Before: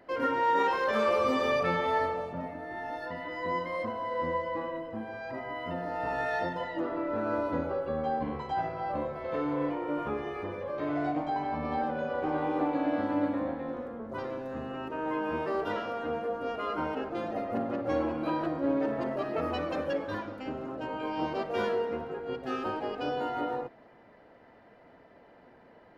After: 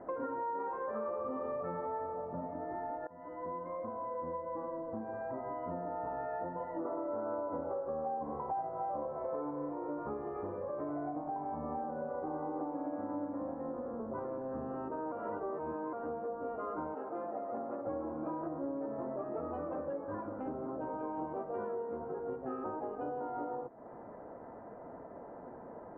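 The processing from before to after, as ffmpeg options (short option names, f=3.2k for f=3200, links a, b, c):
-filter_complex "[0:a]asettb=1/sr,asplit=3[a][b][c];[a]atrim=end=6.854[d];[b]atrim=start=6.85:end=9.51,asetpts=PTS-STARTPTS,afade=t=in:d=0.004:c=qsin,afade=t=out:st=2.656:d=0.004:c=qsin,equalizer=f=750:t=o:w=2:g=8[e];[c]atrim=start=9.506[f];[d][e]acrossfade=d=0.004:c1=hsin:c2=qsin[g];[g][f]acrossfade=d=0.004:c1=qsin:c2=hsin,asettb=1/sr,asplit=3[h][i][j];[h]atrim=end=11.224[k];[i]atrim=start=11.22:end=12.85,asetpts=PTS-STARTPTS,afade=t=in:d=0.004:c=qsin,afade=t=out:st=1.626:d=0.004:c=qsin,equalizer=f=3.2k:w=1.4:g=-6.5[l];[j]atrim=start=12.846[m];[k][l]acrossfade=d=0.004:c1=hsin:c2=qsin[n];[n][m]acrossfade=d=0.004:c1=qsin:c2=hsin,asettb=1/sr,asplit=3[o][p][q];[o]atrim=end=16.954[r];[p]atrim=start=16.95:end=17.87,asetpts=PTS-STARTPTS,afade=t=in:d=0.004:c=qsin,afade=t=out:st=0.916:d=0.004:c=qsin,highpass=f=530:p=1[s];[q]atrim=start=17.866[t];[r][s]acrossfade=d=0.004:c1=hsin:c2=qsin[u];[u][t]acrossfade=d=0.004:c1=qsin:c2=hsin,asplit=4[v][w][x][y];[v]atrim=end=3.07,asetpts=PTS-STARTPTS,afade=t=out:st=3.066:d=0.004:c=hsin:silence=0.0891251[z];[w]atrim=start=3.07:end=15.122,asetpts=PTS-STARTPTS,afade=t=in:d=3.14:c=qsin:silence=0.0891251[aa];[x]atrim=start=15.118:end=15.932,asetpts=PTS-STARTPTS,areverse[ab];[y]atrim=start=15.928[ac];[z][aa]concat=n=2:v=0:a=1[ad];[ad][ab]acrossfade=d=0.004:c1=hsin:c2=hsin[ae];[ae][ac]acrossfade=d=0.004:c1=hsin:c2=hsin,lowpass=f=1.2k:w=0.5412,lowpass=f=1.2k:w=1.3066,lowshelf=f=170:g=-4.5,acompressor=threshold=-47dB:ratio=5,volume=9dB"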